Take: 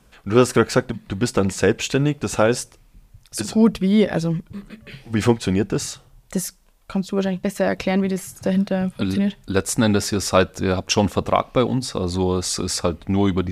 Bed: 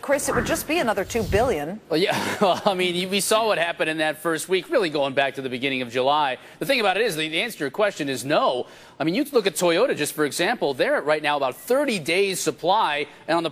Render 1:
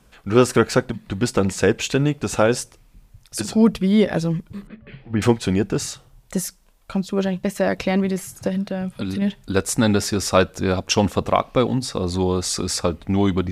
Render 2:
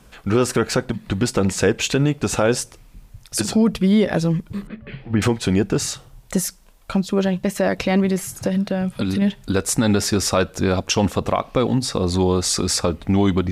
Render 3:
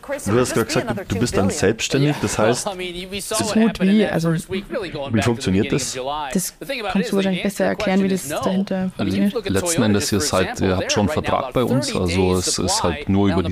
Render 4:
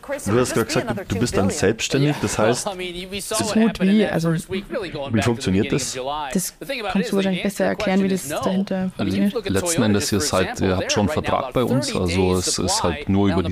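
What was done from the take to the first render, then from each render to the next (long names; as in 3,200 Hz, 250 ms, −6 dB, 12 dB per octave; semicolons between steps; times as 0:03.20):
0:04.67–0:05.22: high-frequency loss of the air 420 metres; 0:08.48–0:09.22: downward compressor 1.5 to 1, threshold −28 dBFS
in parallel at −0.5 dB: downward compressor, threshold −26 dBFS, peak gain reduction 16.5 dB; on the sum: brickwall limiter −7.5 dBFS, peak gain reduction 7 dB
mix in bed −5 dB
level −1 dB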